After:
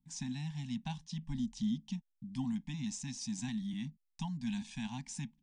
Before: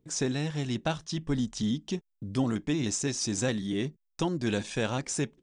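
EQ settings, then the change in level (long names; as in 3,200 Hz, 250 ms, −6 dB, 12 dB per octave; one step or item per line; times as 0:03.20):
elliptic band-stop filter 250–860 Hz, stop band 50 dB
high-shelf EQ 3,100 Hz −9.5 dB
phaser with its sweep stopped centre 350 Hz, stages 6
−3.5 dB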